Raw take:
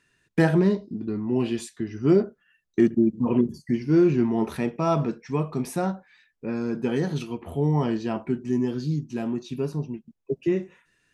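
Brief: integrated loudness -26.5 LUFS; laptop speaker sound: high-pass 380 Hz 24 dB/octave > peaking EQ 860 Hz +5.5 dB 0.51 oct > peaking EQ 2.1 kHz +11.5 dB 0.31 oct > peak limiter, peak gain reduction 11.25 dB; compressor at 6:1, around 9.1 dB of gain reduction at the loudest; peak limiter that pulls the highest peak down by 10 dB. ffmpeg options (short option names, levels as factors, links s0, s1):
-af "acompressor=threshold=0.0631:ratio=6,alimiter=limit=0.0631:level=0:latency=1,highpass=f=380:w=0.5412,highpass=f=380:w=1.3066,equalizer=f=860:t=o:w=0.51:g=5.5,equalizer=f=2100:t=o:w=0.31:g=11.5,volume=5.96,alimiter=limit=0.141:level=0:latency=1"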